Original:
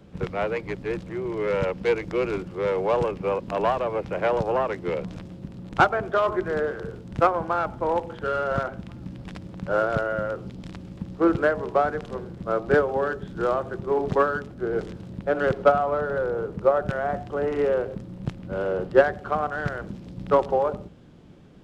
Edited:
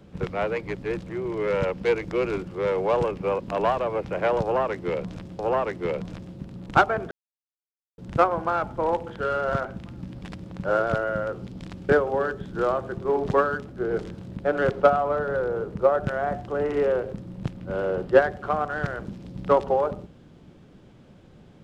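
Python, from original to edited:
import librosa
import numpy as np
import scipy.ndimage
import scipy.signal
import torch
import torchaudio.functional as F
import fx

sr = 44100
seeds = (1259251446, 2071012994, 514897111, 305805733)

y = fx.edit(x, sr, fx.repeat(start_s=4.42, length_s=0.97, count=2),
    fx.silence(start_s=6.14, length_s=0.87),
    fx.cut(start_s=10.92, length_s=1.79), tone=tone)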